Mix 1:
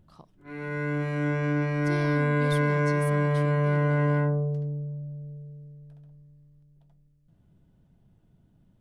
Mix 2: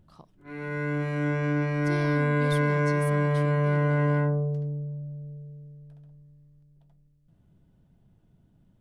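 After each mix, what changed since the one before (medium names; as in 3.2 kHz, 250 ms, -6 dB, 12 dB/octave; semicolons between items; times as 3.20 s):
no change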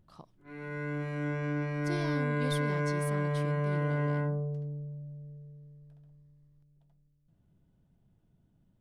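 background -6.5 dB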